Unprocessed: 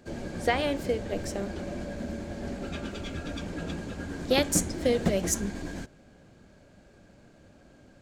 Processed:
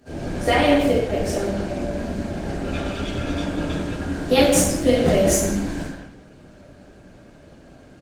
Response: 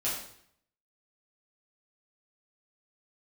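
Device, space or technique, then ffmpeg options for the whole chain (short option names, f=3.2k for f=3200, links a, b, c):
speakerphone in a meeting room: -filter_complex "[0:a]asettb=1/sr,asplit=3[a][b][c];[a]atrim=end=3.074[d];[b]atrim=start=3.07:end=3.62,asetpts=PTS-STARTPTS,afade=t=in:d=0.004:c=qsin,afade=t=out:st=0.546:d=0.004:c=qsin,adynamicequalizer=threshold=0.00141:dfrequency=1000:dqfactor=2.5:tfrequency=1000:tqfactor=2.5:attack=5:release=100:ratio=0.375:range=1.5:mode=boostabove:tftype=bell[e];[c]atrim=start=3.616[f];[d][e]acrossfade=d=0.004:c1=hsin:c2=qsin[g];[g][f]acrossfade=d=0.004:c1=qsin:c2=hsin[h];[1:a]atrim=start_sample=2205[i];[h][i]afir=irnorm=-1:irlink=0,asplit=2[j][k];[k]adelay=170,highpass=300,lowpass=3.4k,asoftclip=type=hard:threshold=-14.5dB,volume=-7dB[l];[j][l]amix=inputs=2:normalize=0,dynaudnorm=f=160:g=3:m=4dB" -ar 48000 -c:a libopus -b:a 24k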